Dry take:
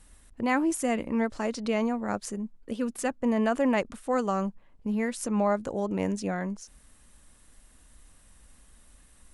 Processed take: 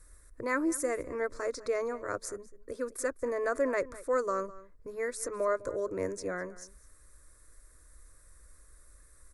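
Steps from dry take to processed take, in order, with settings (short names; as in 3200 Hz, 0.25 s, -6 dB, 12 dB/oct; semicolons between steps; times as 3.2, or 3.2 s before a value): fixed phaser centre 800 Hz, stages 6; outdoor echo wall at 35 m, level -18 dB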